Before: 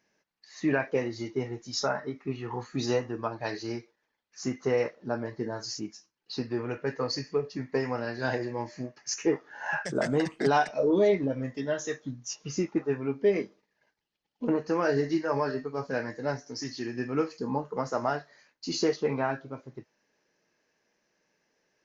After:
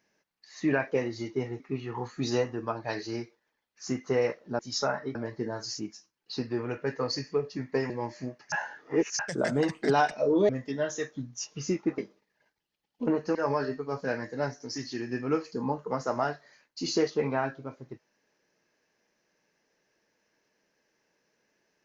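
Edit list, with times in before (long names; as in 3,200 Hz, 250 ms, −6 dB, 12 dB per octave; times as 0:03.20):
0:01.60–0:02.16: move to 0:05.15
0:07.90–0:08.47: remove
0:09.09–0:09.76: reverse
0:11.06–0:11.38: remove
0:12.87–0:13.39: remove
0:14.76–0:15.21: remove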